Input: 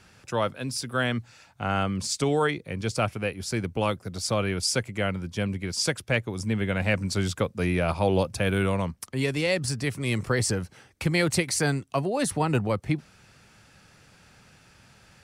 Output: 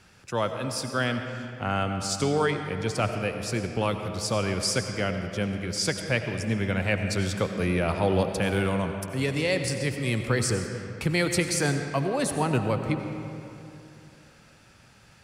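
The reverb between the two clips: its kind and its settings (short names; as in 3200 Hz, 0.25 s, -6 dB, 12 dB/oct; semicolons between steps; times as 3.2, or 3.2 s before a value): digital reverb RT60 2.9 s, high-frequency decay 0.6×, pre-delay 50 ms, DRR 6 dB; gain -1 dB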